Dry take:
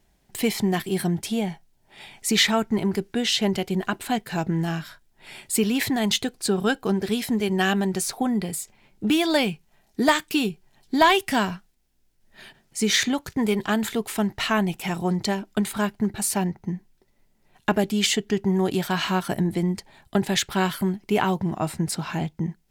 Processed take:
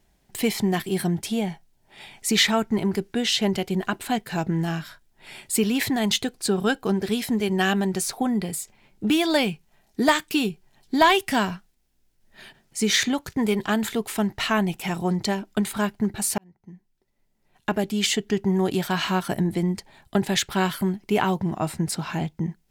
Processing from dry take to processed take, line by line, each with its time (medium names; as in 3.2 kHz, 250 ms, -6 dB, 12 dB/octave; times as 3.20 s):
16.38–18.29 s: fade in